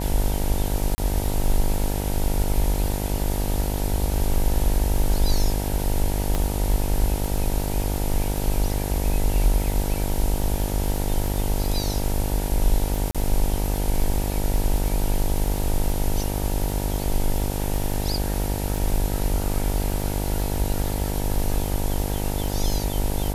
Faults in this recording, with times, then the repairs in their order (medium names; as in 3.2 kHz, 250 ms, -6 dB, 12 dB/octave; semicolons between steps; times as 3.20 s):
buzz 50 Hz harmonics 19 -27 dBFS
crackle 29 per s -28 dBFS
0.95–0.98 s: dropout 30 ms
6.35 s: pop -11 dBFS
13.11–13.15 s: dropout 36 ms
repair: de-click; de-hum 50 Hz, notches 19; interpolate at 0.95 s, 30 ms; interpolate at 13.11 s, 36 ms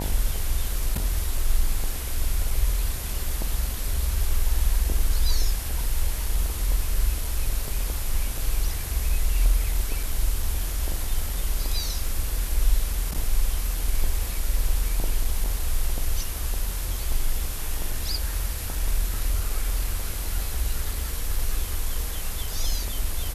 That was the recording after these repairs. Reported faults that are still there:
nothing left